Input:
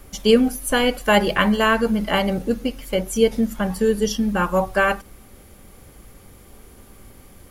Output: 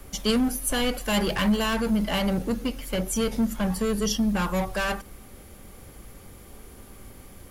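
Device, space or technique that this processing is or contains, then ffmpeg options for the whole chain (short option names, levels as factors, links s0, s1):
one-band saturation: -filter_complex "[0:a]acrossover=split=200|3200[s0][s1][s2];[s1]asoftclip=type=tanh:threshold=0.0501[s3];[s0][s3][s2]amix=inputs=3:normalize=0"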